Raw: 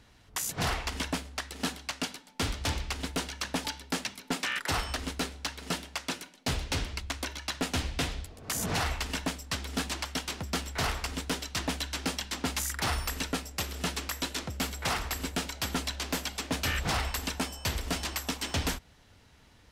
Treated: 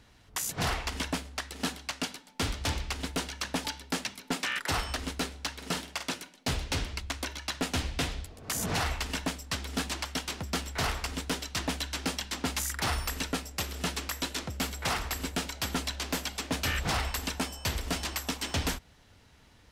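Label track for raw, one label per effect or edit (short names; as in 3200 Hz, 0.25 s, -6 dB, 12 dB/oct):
5.530000	6.140000	doubler 49 ms -7.5 dB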